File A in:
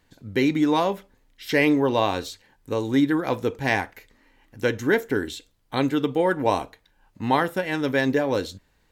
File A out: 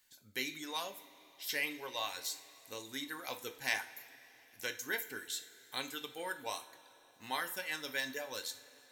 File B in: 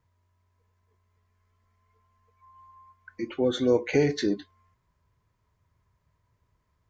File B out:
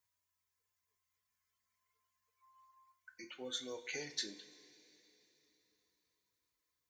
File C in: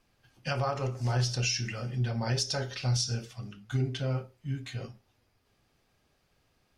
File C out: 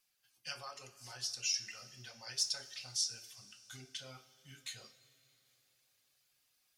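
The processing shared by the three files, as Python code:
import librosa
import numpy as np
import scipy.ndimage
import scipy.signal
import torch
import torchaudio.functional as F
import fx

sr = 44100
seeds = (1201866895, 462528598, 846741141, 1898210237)

y = fx.dereverb_blind(x, sr, rt60_s=0.86)
y = fx.rider(y, sr, range_db=4, speed_s=0.5)
y = scipy.signal.lfilter([1.0, -0.97], [1.0], y)
y = fx.rev_double_slope(y, sr, seeds[0], early_s=0.36, late_s=3.8, knee_db=-18, drr_db=6.0)
y = F.gain(torch.from_numpy(y), 1.0).numpy()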